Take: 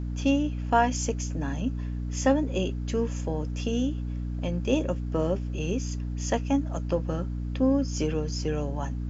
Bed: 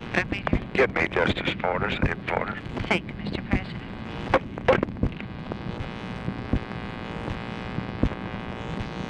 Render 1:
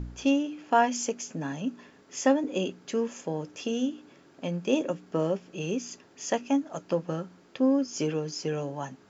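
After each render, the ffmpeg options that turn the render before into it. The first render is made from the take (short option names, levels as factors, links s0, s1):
-af "bandreject=f=60:t=h:w=4,bandreject=f=120:t=h:w=4,bandreject=f=180:t=h:w=4,bandreject=f=240:t=h:w=4,bandreject=f=300:t=h:w=4"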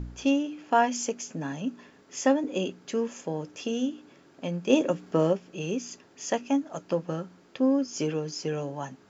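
-filter_complex "[0:a]asplit=3[s0][s1][s2];[s0]atrim=end=4.702[s3];[s1]atrim=start=4.698:end=5.332,asetpts=PTS-STARTPTS,volume=1.58[s4];[s2]atrim=start=5.328[s5];[s3][s4]acrossfade=d=0.004:c1=hsin:c2=hsin[s6];[s6][s5]acrossfade=d=0.004:c1=hsin:c2=hsin"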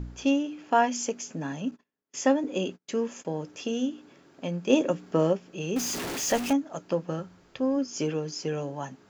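-filter_complex "[0:a]asettb=1/sr,asplit=3[s0][s1][s2];[s0]atrim=end=1.714[s3];[s1]atrim=start=1.71:end=3.25,asetpts=PTS-STARTPTS,afade=t=in:d=0.004:c=qsin,afade=t=out:st=1.536:d=0.004:c=qsin,agate=range=0.02:threshold=0.00447:ratio=16:release=100:detection=peak[s4];[s2]atrim=start=3.246[s5];[s3][s4]acrossfade=d=0.004:c1=hsin:c2=qsin[s6];[s6][s5]acrossfade=d=0.004:c1=qsin:c2=hsin,asettb=1/sr,asplit=3[s7][s8][s9];[s7]atrim=end=5.764[s10];[s8]atrim=start=5.76:end=6.53,asetpts=PTS-STARTPTS,afade=t=in:d=0.004:c=qsin,afade=t=out:st=0.766:d=0.004:c=qsin,aeval=exprs='val(0)+0.5*0.0422*sgn(val(0))':c=same[s11];[s9]atrim=start=6.526[s12];[s10][s11]acrossfade=d=0.004:c1=hsin:c2=qsin[s13];[s13][s12]acrossfade=d=0.004:c1=qsin:c2=hsin,asplit=3[s14][s15][s16];[s14]afade=t=out:st=7.19:d=0.02[s17];[s15]asubboost=boost=7:cutoff=88,afade=t=in:st=7.19:d=0.02,afade=t=out:st=7.76:d=0.02[s18];[s16]afade=t=in:st=7.76:d=0.02[s19];[s17][s18][s19]amix=inputs=3:normalize=0"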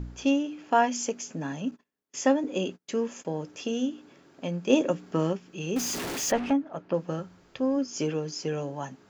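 -filter_complex "[0:a]asettb=1/sr,asplit=3[s0][s1][s2];[s0]atrim=end=5.144[s3];[s1]atrim=start=5.14:end=5.67,asetpts=PTS-STARTPTS,afade=t=in:d=0.004:c=qsin,afade=t=out:st=0.526:d=0.004:c=qsin,equalizer=f=580:t=o:w=0.77:g=-7.5[s4];[s2]atrim=start=5.666[s5];[s3][s4]acrossfade=d=0.004:c1=hsin:c2=qsin[s6];[s6][s5]acrossfade=d=0.004:c1=qsin:c2=hsin,asplit=3[s7][s8][s9];[s7]afade=t=out:st=6.3:d=0.02[s10];[s8]lowpass=2500,afade=t=in:st=6.3:d=0.02,afade=t=out:st=6.93:d=0.02[s11];[s9]afade=t=in:st=6.93:d=0.02[s12];[s10][s11][s12]amix=inputs=3:normalize=0"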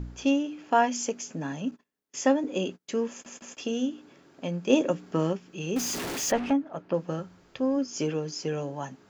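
-filter_complex "[0:a]asplit=4[s0][s1][s2][s3];[s0]atrim=end=3.262[s4];[s1]atrim=start=3.098:end=3.262[s5];[s2]atrim=start=3.098:end=3.262[s6];[s3]atrim=start=3.578[s7];[s4][s5]acrossfade=d=0.004:c1=hsin:c2=hsin[s8];[s8][s6]acrossfade=d=0.004:c1=hsin:c2=hsin[s9];[s9][s7]acrossfade=d=0.004:c1=hsin:c2=hsin"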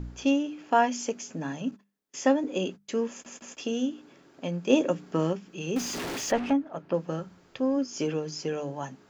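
-filter_complex "[0:a]acrossover=split=5900[s0][s1];[s1]acompressor=threshold=0.00794:ratio=4:attack=1:release=60[s2];[s0][s2]amix=inputs=2:normalize=0,bandreject=f=50:t=h:w=6,bandreject=f=100:t=h:w=6,bandreject=f=150:t=h:w=6,bandreject=f=200:t=h:w=6"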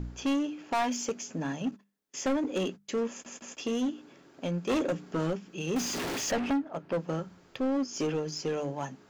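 -filter_complex "[0:a]asplit=2[s0][s1];[s1]acrusher=bits=4:mix=0:aa=0.5,volume=0.251[s2];[s0][s2]amix=inputs=2:normalize=0,asoftclip=type=tanh:threshold=0.0631"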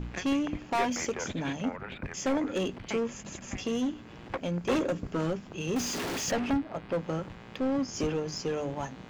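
-filter_complex "[1:a]volume=0.188[s0];[0:a][s0]amix=inputs=2:normalize=0"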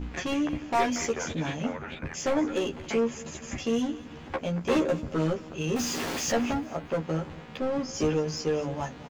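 -filter_complex "[0:a]asplit=2[s0][s1];[s1]adelay=13,volume=0.794[s2];[s0][s2]amix=inputs=2:normalize=0,aecho=1:1:225|450|675:0.112|0.0482|0.0207"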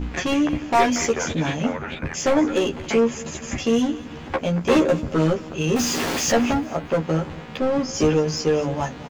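-af "volume=2.37"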